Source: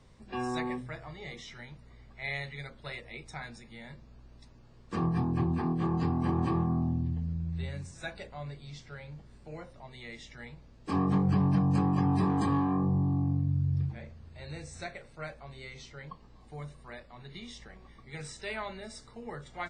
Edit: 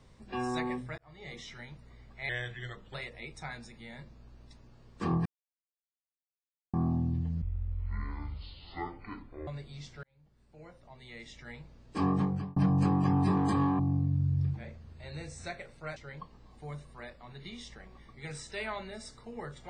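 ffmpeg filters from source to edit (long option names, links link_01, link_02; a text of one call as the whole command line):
ffmpeg -i in.wav -filter_complex "[0:a]asplit=12[link_01][link_02][link_03][link_04][link_05][link_06][link_07][link_08][link_09][link_10][link_11][link_12];[link_01]atrim=end=0.98,asetpts=PTS-STARTPTS,afade=type=out:start_time=0.976:duration=0.004:curve=hsin[link_13];[link_02]atrim=start=0.98:end=2.294,asetpts=PTS-STARTPTS,afade=type=in:duration=0.39[link_14];[link_03]atrim=start=2.29:end=2.86,asetpts=PTS-STARTPTS,asetrate=38367,aresample=44100,atrim=end_sample=28893,asetpts=PTS-STARTPTS[link_15];[link_04]atrim=start=2.856:end=5.17,asetpts=PTS-STARTPTS,afade=type=out:start_time=2.31:duration=0.004:curve=hsin[link_16];[link_05]atrim=start=5.17:end=6.65,asetpts=PTS-STARTPTS,volume=0[link_17];[link_06]atrim=start=6.65:end=7.334,asetpts=PTS-STARTPTS,afade=type=in:duration=0.004:curve=hsin[link_18];[link_07]atrim=start=7.33:end=8.4,asetpts=PTS-STARTPTS,asetrate=22932,aresample=44100,atrim=end_sample=90744,asetpts=PTS-STARTPTS[link_19];[link_08]atrim=start=8.396:end=8.96,asetpts=PTS-STARTPTS,afade=type=out:start_time=0.56:duration=0.004:curve=hsin[link_20];[link_09]atrim=start=8.96:end=11.49,asetpts=PTS-STARTPTS,afade=type=in:duration=1.52,afade=type=out:start_time=2.07:duration=0.46[link_21];[link_10]atrim=start=11.49:end=12.722,asetpts=PTS-STARTPTS,afade=type=in:duration=0.004:curve=hsin[link_22];[link_11]atrim=start=13.148:end=15.322[link_23];[link_12]atrim=start=15.858[link_24];[link_13][link_14]concat=n=2:v=0:a=1[link_25];[link_25][link_15]acrossfade=duration=0.004:curve1=hsin:curve2=hsin[link_26];[link_16][link_17][link_18]concat=n=3:v=0:a=1[link_27];[link_26][link_27]acrossfade=duration=0.004:curve1=hsin:curve2=hsin[link_28];[link_28][link_19]acrossfade=duration=0.004:curve1=hsin:curve2=hsin[link_29];[link_20][link_21][link_22]concat=n=3:v=0:a=1[link_30];[link_29][link_30]acrossfade=duration=0.004:curve1=hsin:curve2=hsin[link_31];[link_31][link_23]acrossfade=duration=0.004:curve1=hsin:curve2=hsin[link_32];[link_32][link_24]acrossfade=duration=0.004:curve1=hsin:curve2=hsin" out.wav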